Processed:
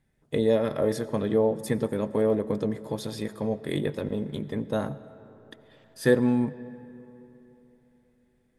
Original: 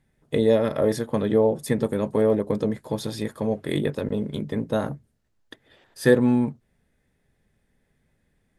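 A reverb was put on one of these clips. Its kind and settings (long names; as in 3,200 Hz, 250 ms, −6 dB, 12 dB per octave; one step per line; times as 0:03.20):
comb and all-pass reverb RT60 3.5 s, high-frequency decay 0.5×, pre-delay 50 ms, DRR 16 dB
level −3.5 dB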